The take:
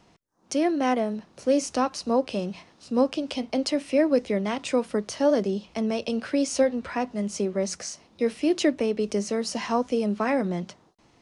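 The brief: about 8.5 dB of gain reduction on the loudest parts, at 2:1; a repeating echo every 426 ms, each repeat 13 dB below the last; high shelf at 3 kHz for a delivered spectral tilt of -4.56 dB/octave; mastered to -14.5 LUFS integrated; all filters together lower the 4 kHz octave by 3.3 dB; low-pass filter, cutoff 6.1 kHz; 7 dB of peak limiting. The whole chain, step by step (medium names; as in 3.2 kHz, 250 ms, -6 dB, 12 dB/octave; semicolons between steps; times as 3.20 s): low-pass 6.1 kHz; treble shelf 3 kHz +4 dB; peaking EQ 4 kHz -7 dB; compression 2:1, threshold -32 dBFS; peak limiter -25 dBFS; feedback delay 426 ms, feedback 22%, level -13 dB; trim +20.5 dB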